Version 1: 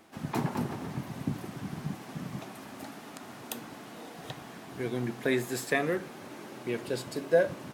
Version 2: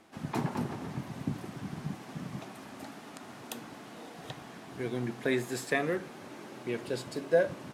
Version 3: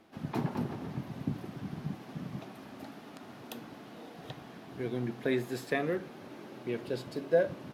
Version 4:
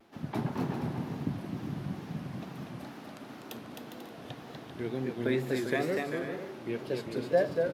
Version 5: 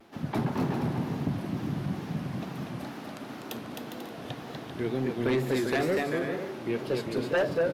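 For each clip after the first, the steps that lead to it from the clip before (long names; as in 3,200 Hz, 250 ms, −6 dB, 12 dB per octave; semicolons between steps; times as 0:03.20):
Bessel low-pass filter 11,000 Hz, order 2; level −1.5 dB
octave-band graphic EQ 1,000/2,000/8,000 Hz −3/−3/−11 dB
bouncing-ball delay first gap 250 ms, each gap 0.6×, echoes 5; tape wow and flutter 100 cents
sine wavefolder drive 9 dB, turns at −13.5 dBFS; level −7.5 dB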